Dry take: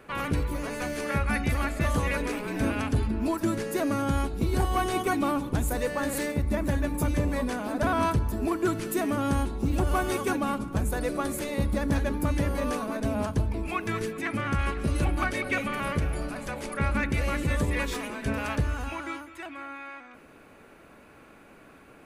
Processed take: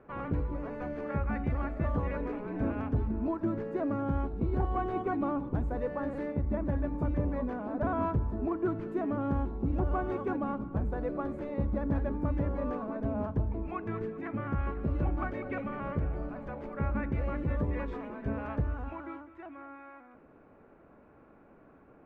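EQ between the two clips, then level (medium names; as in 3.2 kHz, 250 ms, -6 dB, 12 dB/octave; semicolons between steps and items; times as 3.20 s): low-pass 1.1 kHz 12 dB/octave; -4.0 dB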